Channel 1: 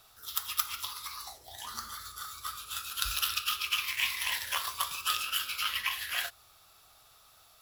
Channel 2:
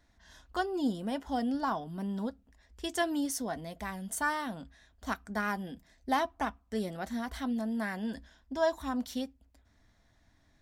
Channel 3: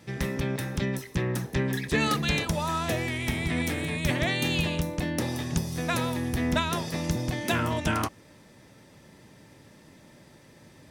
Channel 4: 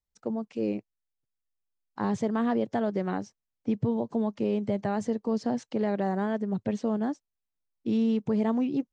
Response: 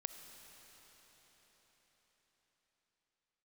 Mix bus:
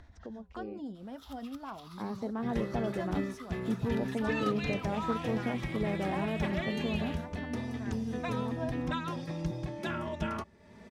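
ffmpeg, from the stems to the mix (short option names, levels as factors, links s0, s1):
-filter_complex "[0:a]acompressor=threshold=0.0126:ratio=6,adelay=950,volume=0.422[s0];[1:a]equalizer=f=77:t=o:w=0.77:g=11.5,acrossover=split=520[s1][s2];[s1]aeval=exprs='val(0)*(1-0.5/2+0.5/2*cos(2*PI*9.7*n/s))':c=same[s3];[s2]aeval=exprs='val(0)*(1-0.5/2-0.5/2*cos(2*PI*9.7*n/s))':c=same[s4];[s3][s4]amix=inputs=2:normalize=0,volume=0.355[s5];[2:a]asplit=2[s6][s7];[s7]adelay=3.2,afreqshift=0.28[s8];[s6][s8]amix=inputs=2:normalize=1,adelay=2350,volume=0.562[s9];[3:a]dynaudnorm=f=470:g=9:m=2.66,flanger=delay=0.4:depth=8.6:regen=-80:speed=0.88:shape=sinusoidal,volume=0.299[s10];[s0][s5][s9][s10]amix=inputs=4:normalize=0,acompressor=mode=upward:threshold=0.01:ratio=2.5,aemphasis=mode=reproduction:type=75fm"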